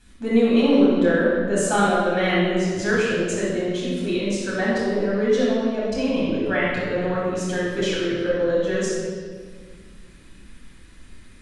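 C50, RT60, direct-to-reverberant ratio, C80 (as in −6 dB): −2.5 dB, 1.7 s, −8.0 dB, 0.5 dB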